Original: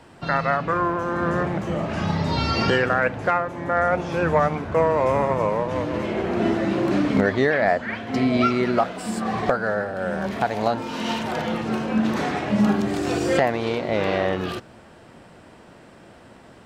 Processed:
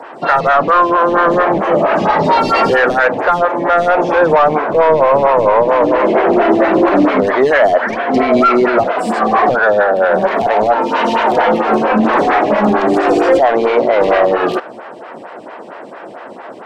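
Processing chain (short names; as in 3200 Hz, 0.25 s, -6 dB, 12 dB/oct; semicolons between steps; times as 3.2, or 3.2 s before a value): 4.41–5.27 median filter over 5 samples; HPF 360 Hz 6 dB/oct; high shelf 2200 Hz -5 dB; overdrive pedal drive 21 dB, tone 1200 Hz, clips at -7.5 dBFS; maximiser +12.5 dB; photocell phaser 4.4 Hz; gain -1 dB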